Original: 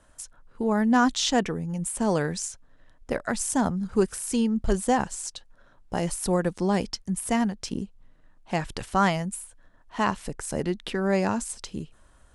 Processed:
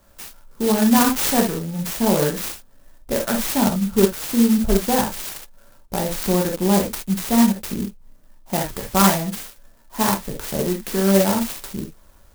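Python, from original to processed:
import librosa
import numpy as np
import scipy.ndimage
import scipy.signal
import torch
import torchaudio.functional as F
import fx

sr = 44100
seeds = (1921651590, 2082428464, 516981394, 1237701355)

y = fx.rev_gated(x, sr, seeds[0], gate_ms=90, shape='flat', drr_db=-0.5)
y = fx.clock_jitter(y, sr, seeds[1], jitter_ms=0.11)
y = F.gain(torch.from_numpy(y), 2.5).numpy()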